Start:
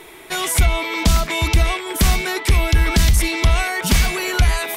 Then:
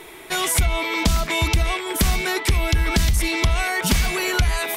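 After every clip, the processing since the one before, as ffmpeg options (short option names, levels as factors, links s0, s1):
-af "acompressor=threshold=0.178:ratio=4"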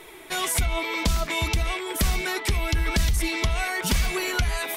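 -af "flanger=delay=1.5:depth=3.4:regen=66:speed=1:shape=triangular"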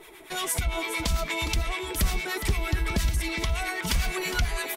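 -filter_complex "[0:a]acrossover=split=880[s0][s1];[s0]aeval=exprs='val(0)*(1-0.7/2+0.7/2*cos(2*PI*8.8*n/s))':c=same[s2];[s1]aeval=exprs='val(0)*(1-0.7/2-0.7/2*cos(2*PI*8.8*n/s))':c=same[s3];[s2][s3]amix=inputs=2:normalize=0,asplit=2[s4][s5];[s5]aecho=0:1:412:0.299[s6];[s4][s6]amix=inputs=2:normalize=0"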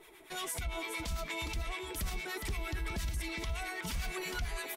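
-af "alimiter=limit=0.106:level=0:latency=1:release=33,volume=0.376"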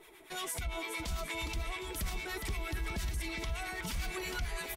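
-af "aecho=1:1:761:0.2"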